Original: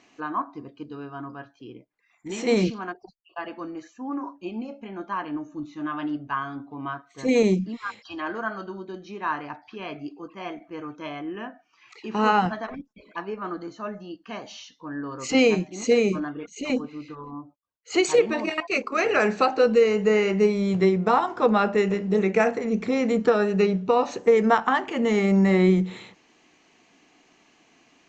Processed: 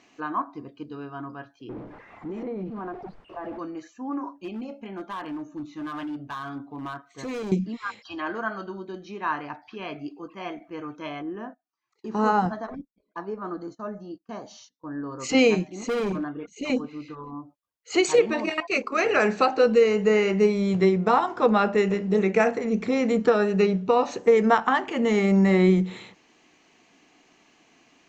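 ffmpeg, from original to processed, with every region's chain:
ffmpeg -i in.wav -filter_complex "[0:a]asettb=1/sr,asplit=3[link_01][link_02][link_03];[link_01]atrim=end=1.694[link_04];[link_02]atrim=start=1.69:end=3.59,asetpts=PTS-STARTPTS,afade=type=in:duration=0.004:curve=qsin,afade=type=out:start_time=1.896:duration=0.004:curve=qsin,aeval=exprs='val(0)+0.5*0.0211*sgn(val(0))':channel_layout=same,lowpass=1000,acompressor=threshold=-30dB:ratio=6:attack=3.2:release=140:knee=1:detection=peak[link_05];[link_03]atrim=start=3.586[link_06];[link_04][link_05]acrossfade=duration=0.004:curve1=hsin:curve2=qsin[link_07];[link_07][link_06]acrossfade=duration=0.004:curve1=qsin:curve2=hsin,asettb=1/sr,asplit=3[link_08][link_09][link_10];[link_08]atrim=end=4.394[link_11];[link_09]atrim=start=4.39:end=7.52,asetpts=PTS-STARTPTS,afade=type=in:duration=0.004:curve=qsin,afade=type=out:start_time=3.126:duration=0.004:curve=qsin,acompressor=threshold=-29dB:ratio=2.5:attack=3.2:release=140:knee=1:detection=peak,asoftclip=type=hard:threshold=-29dB[link_12];[link_10]atrim=start=7.516[link_13];[link_11][link_12]acrossfade=duration=0.004:curve1=hsin:curve2=qsin[link_14];[link_14][link_13]acrossfade=duration=0.004:curve1=qsin:curve2=hsin,asettb=1/sr,asplit=3[link_15][link_16][link_17];[link_15]atrim=end=11.224[link_18];[link_16]atrim=start=11.22:end=15.2,asetpts=PTS-STARTPTS,afade=type=in:duration=0.004:curve=qsin,afade=type=out:start_time=3.976:duration=0.004:curve=qsin,agate=range=-22dB:threshold=-46dB:ratio=16:release=100:detection=peak,equalizer=frequency=2600:width=1.4:gain=-15[link_19];[link_17]atrim=start=15.196[link_20];[link_18][link_19]acrossfade=duration=0.004:curve1=hsin:curve2=qsin[link_21];[link_21][link_20]acrossfade=duration=0.004:curve1=qsin:curve2=hsin,asettb=1/sr,asplit=3[link_22][link_23][link_24];[link_22]atrim=end=15.724[link_25];[link_23]atrim=start=15.72:end=16.62,asetpts=PTS-STARTPTS,afade=type=in:duration=0.004:curve=qsin,afade=type=out:start_time=0.896:duration=0.004:curve=qsin,highshelf=frequency=2000:gain=-7.5,asoftclip=type=hard:threshold=-23.5dB[link_26];[link_24]atrim=start=16.616[link_27];[link_25][link_26]acrossfade=duration=0.004:curve1=hsin:curve2=qsin[link_28];[link_28][link_27]acrossfade=duration=0.004:curve1=qsin:curve2=hsin" out.wav

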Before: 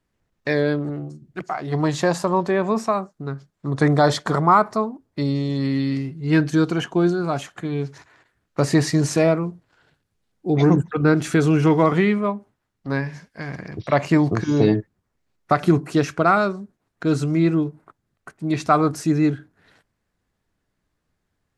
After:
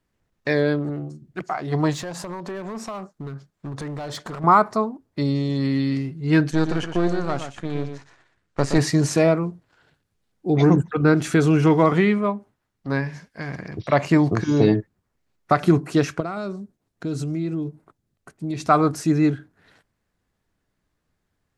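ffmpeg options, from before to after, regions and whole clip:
ffmpeg -i in.wav -filter_complex "[0:a]asettb=1/sr,asplit=3[link_01][link_02][link_03];[link_01]atrim=end=1.934[link_04];[link_02]atrim=start=1.93:end=4.44,asetpts=PTS-STARTPTS,afade=type=in:duration=0.004:curve=qsin,afade=type=out:start_time=2.506:duration=0.004:curve=qsin,acompressor=threshold=-26dB:ratio=8:attack=3.2:release=140:knee=1:detection=peak,asoftclip=type=hard:threshold=-27dB[link_05];[link_03]atrim=start=4.436[link_06];[link_04][link_05]acrossfade=duration=0.004:curve1=hsin:curve2=qsin[link_07];[link_07][link_06]acrossfade=duration=0.004:curve1=qsin:curve2=hsin,asettb=1/sr,asplit=3[link_08][link_09][link_10];[link_08]atrim=end=6.514[link_11];[link_09]atrim=start=6.51:end=8.78,asetpts=PTS-STARTPTS,afade=type=in:duration=0.004:curve=qsin,afade=type=out:start_time=2.266:duration=0.004:curve=qsin,aeval=exprs='if(lt(val(0),0),0.251*val(0),val(0))':channel_layout=same,lowpass=frequency=9400:width=0.5412,lowpass=frequency=9400:width=1.3066,aecho=1:1:120:0.376,atrim=end_sample=100107[link_12];[link_10]atrim=start=8.776[link_13];[link_11][link_12]acrossfade=duration=0.004:curve1=hsin:curve2=qsin[link_14];[link_14][link_13]acrossfade=duration=0.004:curve1=qsin:curve2=hsin,asettb=1/sr,asplit=3[link_15][link_16][link_17];[link_15]atrim=end=16.204[link_18];[link_16]atrim=start=16.2:end=18.66,asetpts=PTS-STARTPTS,afade=type=in:duration=0.004:curve=qsin,afade=type=out:start_time=2.456:duration=0.004:curve=qsin,acompressor=threshold=-23dB:ratio=3:attack=3.2:release=140:knee=1:detection=peak,equalizer=frequency=1400:width_type=o:width=2.1:gain=-7.5[link_19];[link_17]atrim=start=18.656[link_20];[link_18][link_19]acrossfade=duration=0.004:curve1=hsin:curve2=qsin[link_21];[link_21][link_20]acrossfade=duration=0.004:curve1=qsin:curve2=hsin" out.wav

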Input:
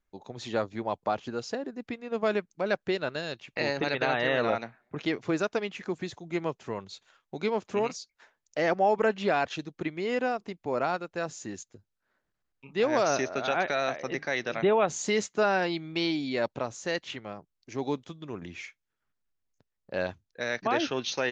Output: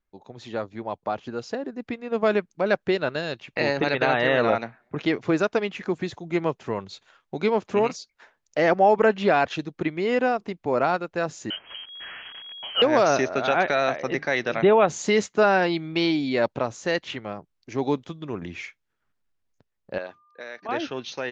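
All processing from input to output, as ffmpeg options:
ffmpeg -i in.wav -filter_complex "[0:a]asettb=1/sr,asplit=3[link_01][link_02][link_03];[link_01]atrim=end=11.504[link_04];[link_02]atrim=start=11.5:end=12.82,asetpts=PTS-STARTPTS,afade=type=in:duration=0.004:curve=qsin,afade=type=out:start_time=1.316:duration=0.004:curve=qsin,aeval=exprs='val(0)+0.5*0.0126*sgn(val(0))':channel_layout=same,lowpass=frequency=2800:width_type=q:width=0.5098,lowpass=frequency=2800:width_type=q:width=0.6013,lowpass=frequency=2800:width_type=q:width=0.9,lowpass=frequency=2800:width_type=q:width=2.563,afreqshift=-3300[link_05];[link_03]atrim=start=12.816[link_06];[link_04][link_05]acrossfade=duration=0.004:curve1=hsin:curve2=qsin[link_07];[link_07][link_06]acrossfade=duration=0.004:curve1=qsin:curve2=hsin,asettb=1/sr,asplit=3[link_08][link_09][link_10];[link_08]atrim=end=19.984[link_11];[link_09]atrim=start=19.98:end=20.69,asetpts=PTS-STARTPTS,afade=type=in:duration=0.004:curve=qsin,afade=type=out:start_time=0.706:duration=0.004:curve=qsin,acompressor=threshold=-37dB:ratio=2:attack=3.2:release=140:knee=1:detection=peak,highpass=320,lowpass=6300,aeval=exprs='val(0)+0.001*sin(2*PI*1200*n/s)':channel_layout=same[link_12];[link_10]atrim=start=20.686[link_13];[link_11][link_12]acrossfade=duration=0.004:curve1=hsin:curve2=qsin[link_14];[link_14][link_13]acrossfade=duration=0.004:curve1=qsin:curve2=hsin,lowpass=frequency=3800:poles=1,dynaudnorm=framelen=150:gausssize=21:maxgain=7.5dB,volume=-1dB" out.wav

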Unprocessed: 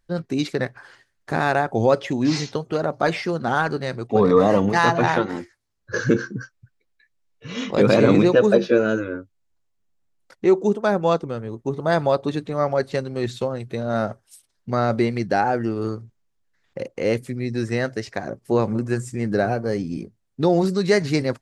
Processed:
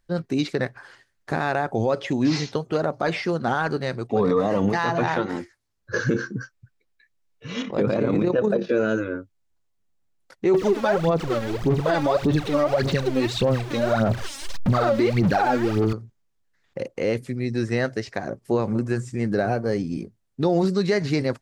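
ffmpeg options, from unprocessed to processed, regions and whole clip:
ffmpeg -i in.wav -filter_complex "[0:a]asettb=1/sr,asplit=3[link_01][link_02][link_03];[link_01]atrim=end=7.624[link_04];[link_02]atrim=start=7.62:end=8.69,asetpts=PTS-STARTPTS,afade=type=in:duration=0.004:curve=qsin,afade=type=out:start_time=1.066:duration=0.004:curve=qsin,highshelf=frequency=2600:gain=-11,tremolo=f=35:d=0.519[link_05];[link_03]atrim=start=8.686[link_06];[link_04][link_05]acrossfade=duration=0.004:curve1=hsin:curve2=qsin[link_07];[link_07][link_06]acrossfade=duration=0.004:curve1=qsin:curve2=hsin,asettb=1/sr,asplit=3[link_08][link_09][link_10];[link_08]atrim=end=10.544[link_11];[link_09]atrim=start=10.54:end=15.93,asetpts=PTS-STARTPTS,afade=type=in:duration=0.004:curve=qsin,afade=type=out:start_time=5.386:duration=0.004:curve=qsin,aeval=exprs='val(0)+0.5*0.0376*sgn(val(0))':channel_layout=same,aphaser=in_gain=1:out_gain=1:delay=3.7:decay=0.76:speed=1.7:type=sinusoidal[link_12];[link_10]atrim=start=15.926[link_13];[link_11][link_12]acrossfade=duration=0.004:curve1=hsin:curve2=qsin[link_14];[link_14][link_13]acrossfade=duration=0.004:curve1=qsin:curve2=hsin,acrossover=split=6500[link_15][link_16];[link_16]acompressor=threshold=-53dB:ratio=4:attack=1:release=60[link_17];[link_15][link_17]amix=inputs=2:normalize=0,alimiter=limit=-12dB:level=0:latency=1:release=55" out.wav

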